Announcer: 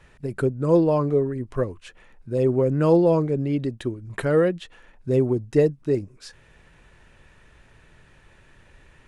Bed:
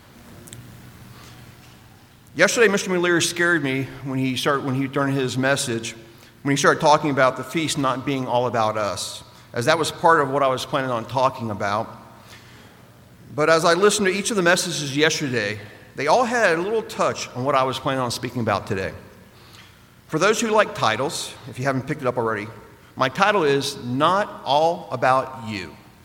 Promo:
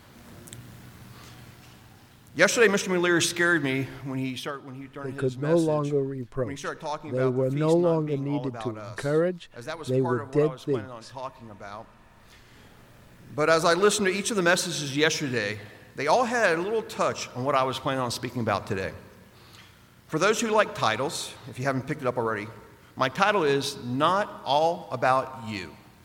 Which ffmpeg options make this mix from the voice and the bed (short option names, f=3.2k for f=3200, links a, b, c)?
-filter_complex "[0:a]adelay=4800,volume=-4.5dB[a];[1:a]volume=9dB,afade=t=out:st=3.94:d=0.65:silence=0.211349,afade=t=in:st=11.92:d=1.04:silence=0.237137[b];[a][b]amix=inputs=2:normalize=0"